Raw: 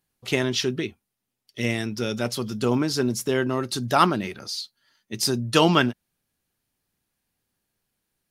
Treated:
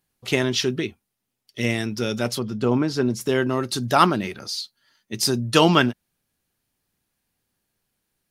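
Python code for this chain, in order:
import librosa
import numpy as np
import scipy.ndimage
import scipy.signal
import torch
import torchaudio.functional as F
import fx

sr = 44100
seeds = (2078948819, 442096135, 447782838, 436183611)

y = fx.lowpass(x, sr, hz=fx.line((2.38, 1400.0), (3.2, 3400.0)), slope=6, at=(2.38, 3.2), fade=0.02)
y = y * 10.0 ** (2.0 / 20.0)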